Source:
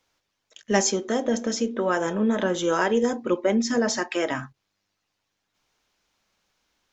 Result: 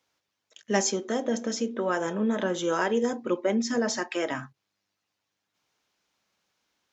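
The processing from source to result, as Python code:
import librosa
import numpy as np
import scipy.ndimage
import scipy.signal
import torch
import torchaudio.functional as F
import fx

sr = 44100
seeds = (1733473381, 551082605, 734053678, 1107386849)

y = scipy.signal.sosfilt(scipy.signal.butter(2, 94.0, 'highpass', fs=sr, output='sos'), x)
y = y * librosa.db_to_amplitude(-3.5)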